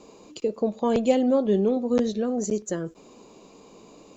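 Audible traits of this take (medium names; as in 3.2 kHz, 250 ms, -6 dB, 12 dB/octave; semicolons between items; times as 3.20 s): noise floor -52 dBFS; spectral tilt -2.0 dB/octave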